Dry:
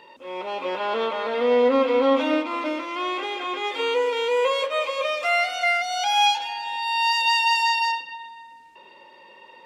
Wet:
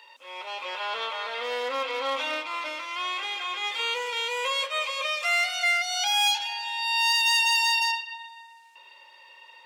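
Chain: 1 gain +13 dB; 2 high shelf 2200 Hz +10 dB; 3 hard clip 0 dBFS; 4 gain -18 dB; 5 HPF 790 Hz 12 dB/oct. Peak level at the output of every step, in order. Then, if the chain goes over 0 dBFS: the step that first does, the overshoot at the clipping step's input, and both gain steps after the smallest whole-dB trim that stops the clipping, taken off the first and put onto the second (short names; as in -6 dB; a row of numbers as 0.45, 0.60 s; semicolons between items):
+3.0, +8.0, 0.0, -18.0, -14.5 dBFS; step 1, 8.0 dB; step 1 +5 dB, step 4 -10 dB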